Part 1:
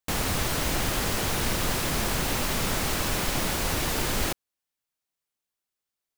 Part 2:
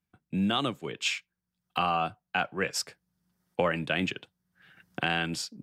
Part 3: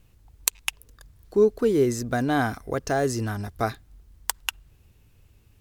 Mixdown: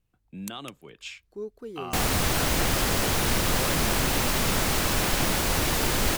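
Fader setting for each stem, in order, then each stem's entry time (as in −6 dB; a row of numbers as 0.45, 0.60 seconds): +2.5, −10.5, −17.5 decibels; 1.85, 0.00, 0.00 seconds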